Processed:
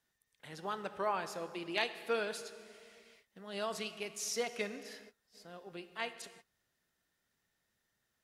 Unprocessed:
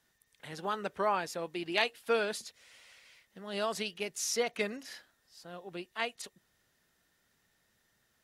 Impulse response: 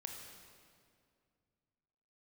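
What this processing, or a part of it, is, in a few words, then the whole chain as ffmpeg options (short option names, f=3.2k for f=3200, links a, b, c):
keyed gated reverb: -filter_complex "[0:a]asplit=3[a][b][c];[1:a]atrim=start_sample=2205[d];[b][d]afir=irnorm=-1:irlink=0[e];[c]apad=whole_len=363283[f];[e][f]sidechaingate=range=-33dB:threshold=-60dB:ratio=16:detection=peak,volume=-0.5dB[g];[a][g]amix=inputs=2:normalize=0,volume=-8.5dB"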